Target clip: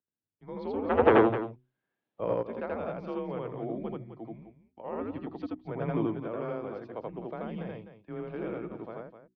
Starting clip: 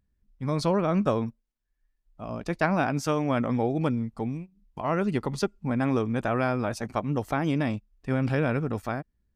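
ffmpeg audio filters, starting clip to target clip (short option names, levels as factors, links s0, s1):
-filter_complex "[0:a]equalizer=f=2100:t=o:w=2.9:g=-14.5,bandreject=f=60:t=h:w=6,bandreject=f=120:t=h:w=6,bandreject=f=180:t=h:w=6,bandreject=f=240:t=h:w=6,bandreject=f=300:t=h:w=6,bandreject=f=360:t=h:w=6,bandreject=f=420:t=h:w=6,bandreject=f=480:t=h:w=6,asplit=3[s0][s1][s2];[s0]afade=t=out:st=0.89:d=0.02[s3];[s1]aeval=exprs='0.266*sin(PI/2*5.01*val(0)/0.266)':c=same,afade=t=in:st=0.89:d=0.02,afade=t=out:st=2.33:d=0.02[s4];[s2]afade=t=in:st=2.33:d=0.02[s5];[s3][s4][s5]amix=inputs=3:normalize=0,asettb=1/sr,asplit=3[s6][s7][s8];[s6]atrim=end=5.674[s9];[s7]atrim=start=5.67:end=6.1,asetpts=PTS-STARTPTS,afade=t=in:d=0.004:c=qsin,afade=t=out:st=0.426:d=0.004:c=qsin,acontrast=61[s10];[s8]atrim=start=6.096[s11];[s9][s10]acrossfade=d=0.004:c1=hsin:c2=qsin[s12];[s12][s11]acrossfade=d=0.004:c1=qsin:c2=hsin,aecho=1:1:81.63|256.6:1|0.316,highpass=f=360:t=q:w=0.5412,highpass=f=360:t=q:w=1.307,lowpass=f=3500:t=q:w=0.5176,lowpass=f=3500:t=q:w=0.7071,lowpass=f=3500:t=q:w=1.932,afreqshift=-110,volume=0.668"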